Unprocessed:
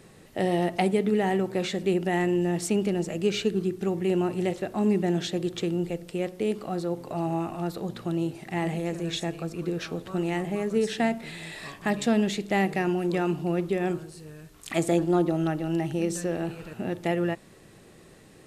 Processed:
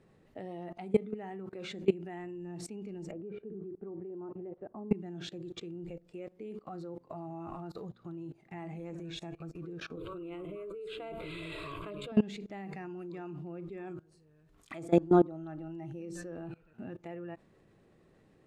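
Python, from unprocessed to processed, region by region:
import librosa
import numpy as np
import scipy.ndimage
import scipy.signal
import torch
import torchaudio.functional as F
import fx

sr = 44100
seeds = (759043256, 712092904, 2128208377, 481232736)

y = fx.chain(x, sr, fx.lowpass(hz=1000.0, slope=12),
    fx.low_shelf(hz=210.0, db=-6.5), at=(3.11, 4.91))
y = fx.chain(y, sr, fx.peak_eq(hz=310.0, db=12.0, octaves=0.2),
    fx.fixed_phaser(hz=1200.0, stages=8),
    fx.env_flatten(amount_pct=100), at=(9.97, 12.12))
y = fx.lowpass(y, sr, hz=1500.0, slope=6)
y = fx.noise_reduce_blind(y, sr, reduce_db=8)
y = fx.level_steps(y, sr, step_db=22)
y = F.gain(torch.from_numpy(y), 2.0).numpy()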